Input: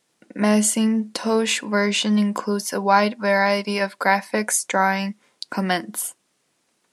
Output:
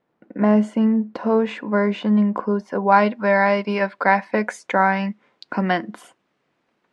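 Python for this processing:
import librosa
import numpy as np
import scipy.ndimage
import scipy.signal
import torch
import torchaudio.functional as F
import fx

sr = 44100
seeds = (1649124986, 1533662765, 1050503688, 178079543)

y = fx.lowpass(x, sr, hz=fx.steps((0.0, 1300.0), (2.92, 2300.0)), slope=12)
y = y * librosa.db_to_amplitude(2.0)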